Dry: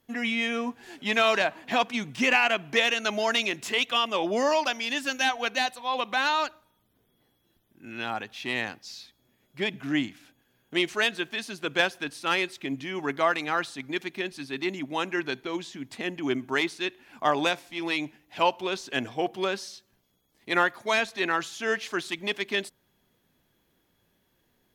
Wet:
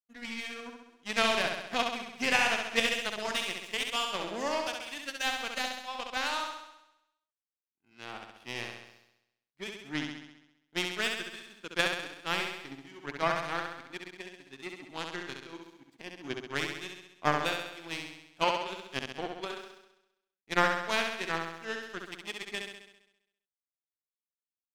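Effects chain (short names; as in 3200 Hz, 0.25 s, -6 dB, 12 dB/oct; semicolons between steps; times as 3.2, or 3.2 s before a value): power-law curve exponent 2; flutter echo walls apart 11.4 m, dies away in 0.88 s; gain +1.5 dB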